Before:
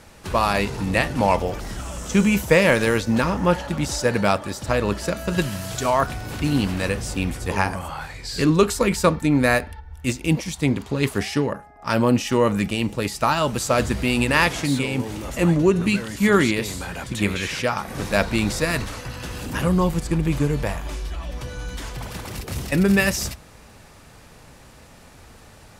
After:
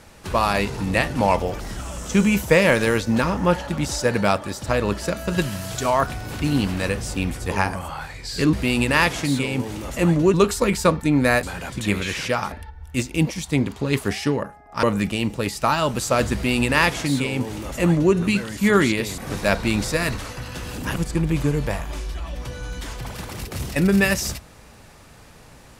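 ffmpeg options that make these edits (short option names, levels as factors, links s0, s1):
-filter_complex "[0:a]asplit=8[s0][s1][s2][s3][s4][s5][s6][s7];[s0]atrim=end=8.532[s8];[s1]atrim=start=13.928:end=15.742[s9];[s2]atrim=start=8.528:end=9.622[s10];[s3]atrim=start=16.768:end=17.862[s11];[s4]atrim=start=9.618:end=11.932[s12];[s5]atrim=start=12.418:end=16.772[s13];[s6]atrim=start=17.858:end=19.642[s14];[s7]atrim=start=19.918[s15];[s8][s9]acrossfade=d=0.004:c1=hsin:c2=hsin[s16];[s16][s10]acrossfade=d=0.004:c1=hsin:c2=hsin[s17];[s17][s11]acrossfade=d=0.004:c1=hsin:c2=hsin[s18];[s18][s12]acrossfade=d=0.004:c1=hsin:c2=hsin[s19];[s19][s13]acrossfade=d=0.004:c1=hsin:c2=hsin[s20];[s20][s14]acrossfade=d=0.004:c1=hsin:c2=hsin[s21];[s21][s15]acrossfade=d=0.004:c1=hsin:c2=hsin"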